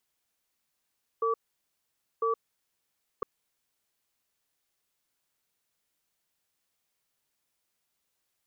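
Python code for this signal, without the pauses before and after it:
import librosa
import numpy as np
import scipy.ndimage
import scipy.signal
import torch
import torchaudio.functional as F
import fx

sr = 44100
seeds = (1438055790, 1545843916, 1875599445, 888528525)

y = fx.cadence(sr, length_s=2.01, low_hz=453.0, high_hz=1150.0, on_s=0.12, off_s=0.88, level_db=-27.0)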